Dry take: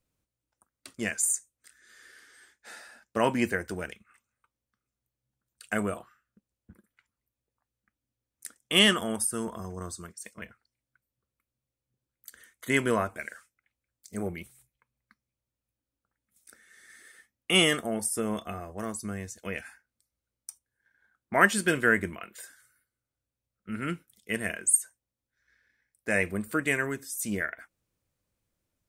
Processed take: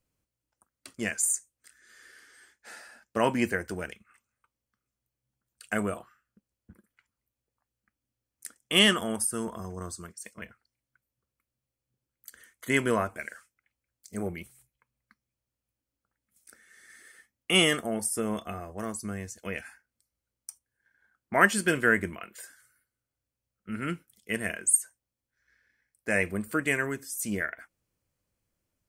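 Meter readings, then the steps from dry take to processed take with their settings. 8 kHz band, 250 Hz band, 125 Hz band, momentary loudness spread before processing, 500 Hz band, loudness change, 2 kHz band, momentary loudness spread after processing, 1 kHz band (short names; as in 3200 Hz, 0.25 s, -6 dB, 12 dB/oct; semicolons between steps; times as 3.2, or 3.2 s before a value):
0.0 dB, 0.0 dB, 0.0 dB, 23 LU, 0.0 dB, 0.0 dB, 0.0 dB, 23 LU, 0.0 dB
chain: notch 3700 Hz, Q 13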